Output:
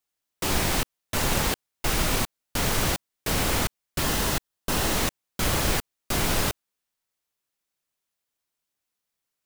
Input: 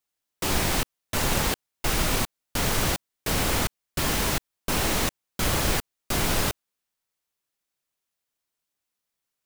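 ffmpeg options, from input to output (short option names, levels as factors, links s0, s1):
-filter_complex "[0:a]asettb=1/sr,asplit=3[s0][s1][s2];[s0]atrim=end=4.034[s3];[s1]atrim=start=4.03:end=4.96,asetpts=PTS-STARTPTS,afade=t=in:d=0.004:c=qsin,afade=t=out:st=0.926:d=0.004:c=qsin,bandreject=f=2300:w=9.7[s4];[s2]atrim=start=4.956[s5];[s3][s4]acrossfade=d=0.004:c1=hsin:c2=qsin[s6];[s6][s5]acrossfade=d=0.004:c1=qsin:c2=hsin"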